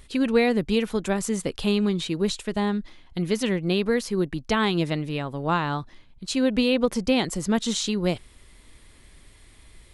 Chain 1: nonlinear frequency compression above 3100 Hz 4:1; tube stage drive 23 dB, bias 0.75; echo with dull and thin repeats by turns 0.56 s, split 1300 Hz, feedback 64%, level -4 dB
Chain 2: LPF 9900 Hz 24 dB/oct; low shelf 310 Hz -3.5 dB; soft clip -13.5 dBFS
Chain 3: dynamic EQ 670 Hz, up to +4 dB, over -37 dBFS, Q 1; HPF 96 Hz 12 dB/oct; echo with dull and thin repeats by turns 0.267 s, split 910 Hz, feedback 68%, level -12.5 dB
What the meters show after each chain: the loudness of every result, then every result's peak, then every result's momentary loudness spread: -29.0, -27.0, -23.5 LUFS; -14.5, -14.5, -7.5 dBFS; 7, 7, 14 LU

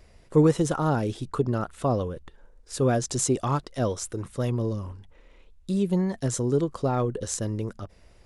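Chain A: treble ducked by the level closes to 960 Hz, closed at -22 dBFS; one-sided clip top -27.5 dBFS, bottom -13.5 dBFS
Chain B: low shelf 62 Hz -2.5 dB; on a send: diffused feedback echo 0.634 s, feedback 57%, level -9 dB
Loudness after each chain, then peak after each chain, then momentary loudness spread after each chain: -29.0, -26.5 LUFS; -13.5, -9.0 dBFS; 10, 11 LU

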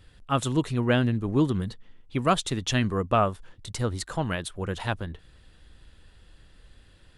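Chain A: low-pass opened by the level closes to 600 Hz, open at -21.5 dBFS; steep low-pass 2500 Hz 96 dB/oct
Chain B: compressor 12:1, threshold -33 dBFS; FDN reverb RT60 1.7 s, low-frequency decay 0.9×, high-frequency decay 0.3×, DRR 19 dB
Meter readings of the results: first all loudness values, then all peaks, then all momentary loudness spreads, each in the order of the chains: -27.5, -38.5 LUFS; -10.5, -20.5 dBFS; 11, 19 LU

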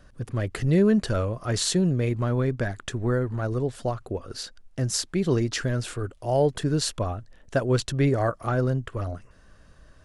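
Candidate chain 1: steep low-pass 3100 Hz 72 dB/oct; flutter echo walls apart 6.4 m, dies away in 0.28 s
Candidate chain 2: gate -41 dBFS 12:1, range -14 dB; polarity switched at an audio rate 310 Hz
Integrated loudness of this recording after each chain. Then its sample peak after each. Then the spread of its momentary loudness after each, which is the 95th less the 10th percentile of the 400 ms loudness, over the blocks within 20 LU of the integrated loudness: -25.5, -25.5 LUFS; -9.0, -11.0 dBFS; 11, 10 LU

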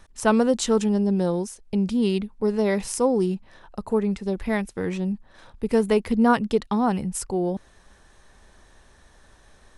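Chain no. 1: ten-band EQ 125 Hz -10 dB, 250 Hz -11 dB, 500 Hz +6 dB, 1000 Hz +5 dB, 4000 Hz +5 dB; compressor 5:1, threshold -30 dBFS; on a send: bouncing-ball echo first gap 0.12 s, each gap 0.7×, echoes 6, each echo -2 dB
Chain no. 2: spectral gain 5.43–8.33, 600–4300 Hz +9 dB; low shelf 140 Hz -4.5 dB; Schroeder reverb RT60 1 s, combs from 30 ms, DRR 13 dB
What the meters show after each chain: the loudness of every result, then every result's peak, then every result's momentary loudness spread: -30.0, -22.5 LUFS; -12.0, -1.5 dBFS; 21, 13 LU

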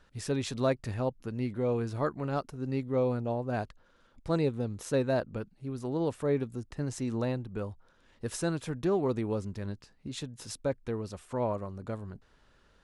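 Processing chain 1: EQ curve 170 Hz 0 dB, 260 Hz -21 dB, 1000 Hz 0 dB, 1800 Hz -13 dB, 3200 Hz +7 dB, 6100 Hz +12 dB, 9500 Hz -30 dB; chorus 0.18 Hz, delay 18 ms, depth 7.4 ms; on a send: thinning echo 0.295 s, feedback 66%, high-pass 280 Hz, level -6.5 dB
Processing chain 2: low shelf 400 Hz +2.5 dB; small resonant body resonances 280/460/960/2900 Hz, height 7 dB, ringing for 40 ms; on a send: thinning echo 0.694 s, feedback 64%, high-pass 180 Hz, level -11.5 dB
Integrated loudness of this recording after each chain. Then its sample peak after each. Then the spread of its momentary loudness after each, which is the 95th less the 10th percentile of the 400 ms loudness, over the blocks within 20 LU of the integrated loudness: -39.5, -28.5 LUFS; -21.5, -11.0 dBFS; 10, 11 LU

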